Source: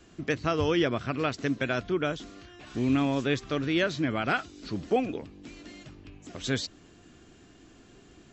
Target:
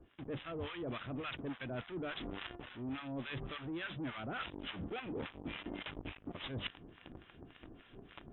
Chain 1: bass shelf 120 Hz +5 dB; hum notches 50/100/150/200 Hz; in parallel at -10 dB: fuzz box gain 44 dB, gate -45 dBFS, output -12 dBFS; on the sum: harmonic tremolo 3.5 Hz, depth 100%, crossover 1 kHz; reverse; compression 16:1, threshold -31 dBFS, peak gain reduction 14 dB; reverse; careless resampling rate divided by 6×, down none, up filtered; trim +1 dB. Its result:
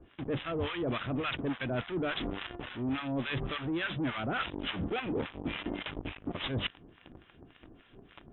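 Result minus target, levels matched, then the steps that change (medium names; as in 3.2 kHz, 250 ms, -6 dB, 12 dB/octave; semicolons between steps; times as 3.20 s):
compression: peak gain reduction -8.5 dB
change: compression 16:1, threshold -40 dBFS, peak gain reduction 22.5 dB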